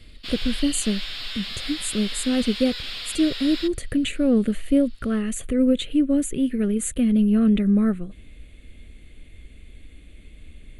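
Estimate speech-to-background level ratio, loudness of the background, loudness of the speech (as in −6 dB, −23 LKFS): 8.0 dB, −31.0 LKFS, −23.0 LKFS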